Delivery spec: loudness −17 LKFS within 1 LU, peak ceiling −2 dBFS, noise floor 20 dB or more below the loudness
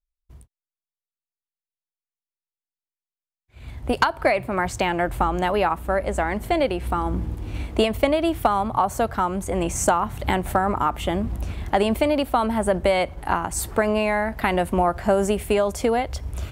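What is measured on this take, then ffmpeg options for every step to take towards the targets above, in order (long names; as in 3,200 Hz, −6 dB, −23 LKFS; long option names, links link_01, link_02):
integrated loudness −23.0 LKFS; sample peak −6.0 dBFS; target loudness −17.0 LKFS
→ -af "volume=6dB,alimiter=limit=-2dB:level=0:latency=1"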